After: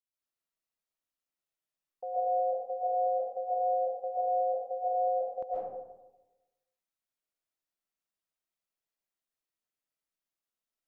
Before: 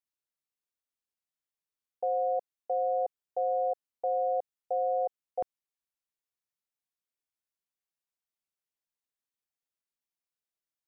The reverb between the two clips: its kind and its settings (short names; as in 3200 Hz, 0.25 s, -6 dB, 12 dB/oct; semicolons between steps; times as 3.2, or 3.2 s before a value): digital reverb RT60 1.1 s, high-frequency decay 0.4×, pre-delay 95 ms, DRR -9 dB; gain -8.5 dB